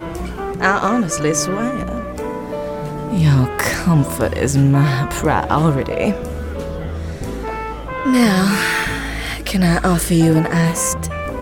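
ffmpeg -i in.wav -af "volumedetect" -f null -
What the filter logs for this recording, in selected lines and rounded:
mean_volume: -17.4 dB
max_volume: -2.0 dB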